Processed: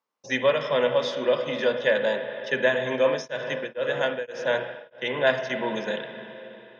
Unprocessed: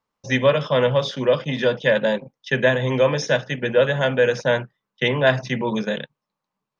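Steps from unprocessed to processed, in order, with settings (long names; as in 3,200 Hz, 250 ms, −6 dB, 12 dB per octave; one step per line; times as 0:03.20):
high-pass filter 280 Hz 12 dB per octave
spring reverb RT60 3.4 s, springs 40/53/57 ms, chirp 65 ms, DRR 6.5 dB
0:02.95–0:05.49: tremolo along a rectified sine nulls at 2.6 Hz → 1.2 Hz
level −4 dB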